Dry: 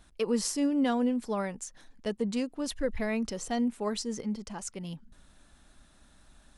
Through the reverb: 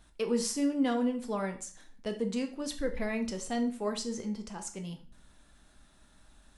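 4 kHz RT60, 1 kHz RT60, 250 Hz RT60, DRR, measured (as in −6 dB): 0.40 s, 0.40 s, 0.45 s, 4.5 dB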